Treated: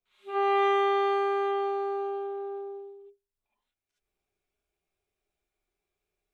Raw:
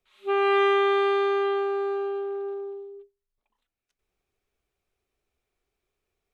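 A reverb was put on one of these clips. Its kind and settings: non-linear reverb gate 90 ms rising, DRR -8 dB; gain -12.5 dB

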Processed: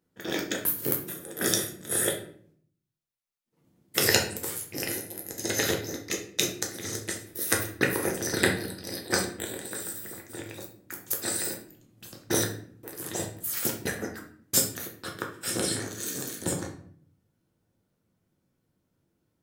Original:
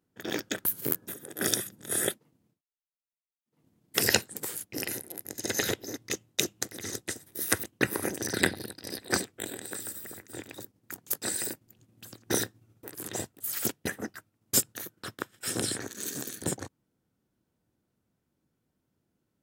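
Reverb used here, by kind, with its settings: shoebox room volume 70 m³, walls mixed, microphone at 0.7 m

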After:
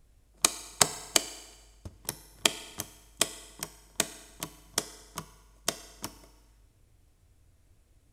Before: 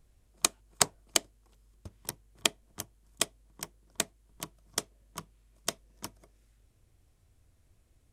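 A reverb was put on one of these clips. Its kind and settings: FDN reverb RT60 1.3 s, low-frequency decay 0.8×, high-frequency decay 0.9×, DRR 11.5 dB; gain +2.5 dB

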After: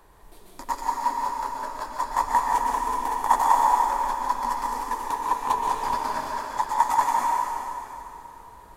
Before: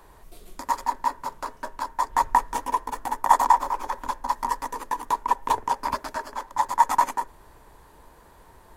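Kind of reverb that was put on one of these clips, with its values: plate-style reverb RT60 3 s, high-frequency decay 0.9×, pre-delay 0.11 s, DRR -2 dB; gain -3.5 dB

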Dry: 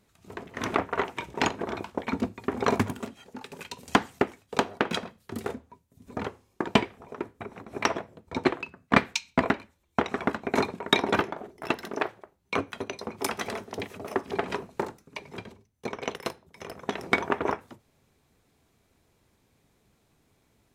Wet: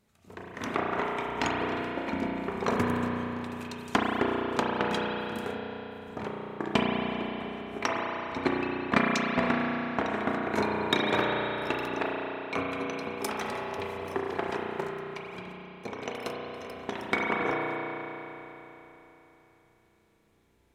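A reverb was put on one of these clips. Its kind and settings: spring tank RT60 3.6 s, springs 33 ms, chirp 65 ms, DRR -3 dB; gain -5 dB

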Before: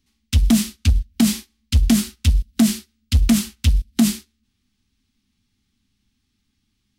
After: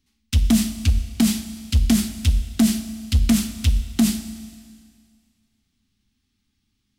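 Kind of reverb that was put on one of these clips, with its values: Schroeder reverb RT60 2 s, combs from 28 ms, DRR 10.5 dB; gain -2 dB

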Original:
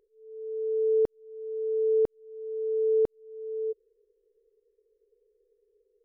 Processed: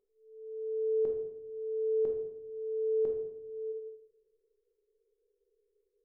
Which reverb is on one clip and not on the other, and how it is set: shoebox room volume 250 m³, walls mixed, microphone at 1.1 m; gain -10.5 dB

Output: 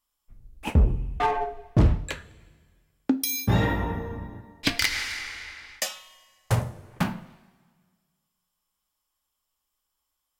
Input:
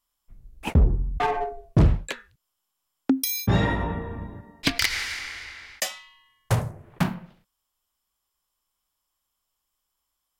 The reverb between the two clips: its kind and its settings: two-slope reverb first 0.22 s, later 1.7 s, from -18 dB, DRR 8 dB; gain -1.5 dB

